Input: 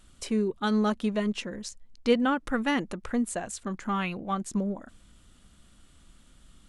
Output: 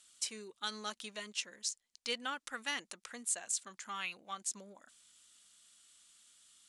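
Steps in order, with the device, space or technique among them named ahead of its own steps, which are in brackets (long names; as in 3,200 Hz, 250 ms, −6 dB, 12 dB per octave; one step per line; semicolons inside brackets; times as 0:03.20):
piezo pickup straight into a mixer (low-pass filter 7,300 Hz 12 dB per octave; first difference)
high-shelf EQ 5,700 Hz +4.5 dB
level +4 dB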